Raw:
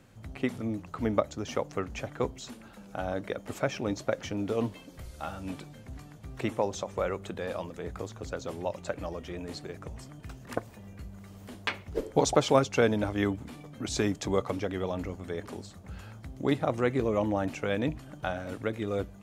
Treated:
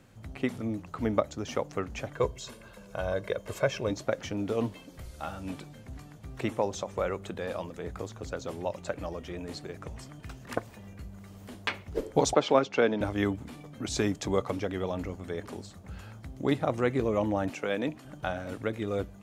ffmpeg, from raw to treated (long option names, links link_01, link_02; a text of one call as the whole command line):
ffmpeg -i in.wav -filter_complex "[0:a]asettb=1/sr,asplit=3[link_01][link_02][link_03];[link_01]atrim=end=2.134[link_04];[link_02]atrim=start=2.13:end=3.91,asetpts=PTS-STARTPTS,afade=type=in:duration=0.004:curve=qsin,afade=type=out:start_time=1.776:duration=0.004:curve=qsin,aecho=1:1:1.9:0.65,atrim=end_sample=78498[link_05];[link_03]atrim=start=3.906[link_06];[link_04][link_05]acrossfade=duration=0.004:curve1=hsin:curve2=qsin[link_07];[link_07][link_06]acrossfade=duration=0.004:curve1=qsin:curve2=hsin,asettb=1/sr,asplit=3[link_08][link_09][link_10];[link_08]atrim=end=9.794[link_11];[link_09]atrim=start=9.79:end=10.94,asetpts=PTS-STARTPTS,afade=type=in:duration=0.004:curve=qsin,afade=type=out:start_time=1.146:duration=0.004:curve=qsin,equalizer=frequency=2600:width=0.41:gain=3[link_12];[link_10]atrim=start=10.936[link_13];[link_11][link_12]acrossfade=duration=0.004:curve1=hsin:curve2=qsin[link_14];[link_14][link_13]acrossfade=duration=0.004:curve1=qsin:curve2=hsin,asettb=1/sr,asplit=3[link_15][link_16][link_17];[link_15]atrim=end=12.344[link_18];[link_16]atrim=start=12.34:end=13.01,asetpts=PTS-STARTPTS,afade=type=in:duration=0.004:curve=qsin,afade=type=out:start_time=0.666:duration=0.004:curve=qsin,acrossover=split=170 5000:gain=0.0891 1 0.1[link_19][link_20][link_21];[link_19][link_20][link_21]amix=inputs=3:normalize=0[link_22];[link_17]atrim=start=13.006[link_23];[link_18][link_22]acrossfade=duration=0.004:curve1=hsin:curve2=qsin[link_24];[link_24][link_23]acrossfade=duration=0.004:curve1=qsin:curve2=hsin,asettb=1/sr,asplit=3[link_25][link_26][link_27];[link_25]atrim=end=17.504[link_28];[link_26]atrim=start=17.5:end=18.05,asetpts=PTS-STARTPTS,afade=type=in:duration=0.004:curve=qsin,afade=type=out:start_time=0.546:duration=0.004:curve=qsin,highpass=210[link_29];[link_27]atrim=start=18.046[link_30];[link_28][link_29]acrossfade=duration=0.004:curve1=hsin:curve2=qsin[link_31];[link_31][link_30]acrossfade=duration=0.004:curve1=qsin:curve2=hsin" out.wav